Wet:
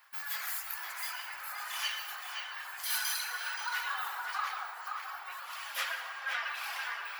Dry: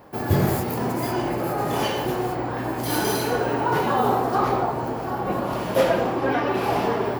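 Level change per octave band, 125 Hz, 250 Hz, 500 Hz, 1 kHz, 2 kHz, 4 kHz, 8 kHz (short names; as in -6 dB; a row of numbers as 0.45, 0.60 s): under -40 dB, under -40 dB, -34.5 dB, -15.5 dB, -4.0 dB, -3.5 dB, -4.0 dB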